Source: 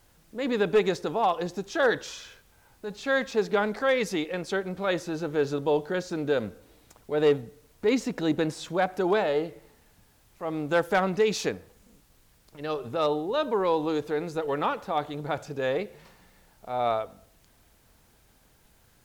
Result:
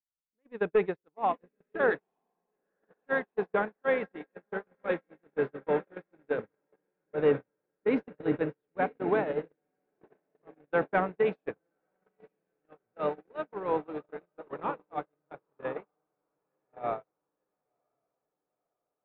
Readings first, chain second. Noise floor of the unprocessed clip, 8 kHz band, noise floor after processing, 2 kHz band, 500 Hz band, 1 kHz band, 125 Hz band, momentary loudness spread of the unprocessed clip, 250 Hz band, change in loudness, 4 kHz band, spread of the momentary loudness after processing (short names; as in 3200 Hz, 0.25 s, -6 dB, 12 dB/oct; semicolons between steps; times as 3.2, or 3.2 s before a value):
-62 dBFS, under -35 dB, under -85 dBFS, -4.5 dB, -5.0 dB, -5.0 dB, -7.5 dB, 10 LU, -6.5 dB, -4.5 dB, under -15 dB, 13 LU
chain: LPF 2400 Hz 24 dB/oct; diffused feedback echo 1.017 s, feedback 69%, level -6 dB; gate -23 dBFS, range -47 dB; gain -3 dB